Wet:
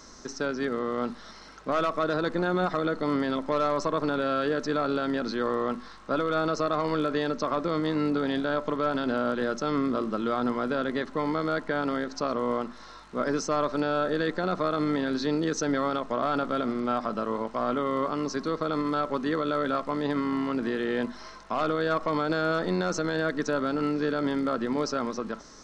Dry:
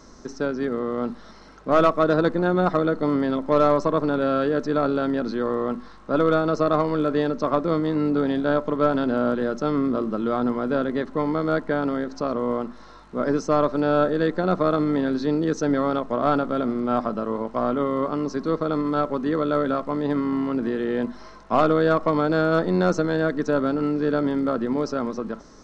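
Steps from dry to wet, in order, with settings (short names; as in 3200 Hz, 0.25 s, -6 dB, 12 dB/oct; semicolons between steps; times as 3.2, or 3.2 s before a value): tilt shelf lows -5 dB, about 1100 Hz; limiter -17 dBFS, peak gain reduction 9.5 dB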